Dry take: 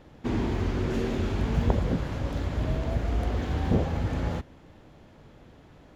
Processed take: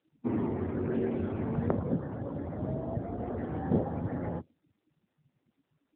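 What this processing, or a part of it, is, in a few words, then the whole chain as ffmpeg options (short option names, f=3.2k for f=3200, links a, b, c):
mobile call with aggressive noise cancelling: -af "highpass=f=150:p=1,afftdn=nr=32:nf=-38" -ar 8000 -c:a libopencore_amrnb -b:a 7950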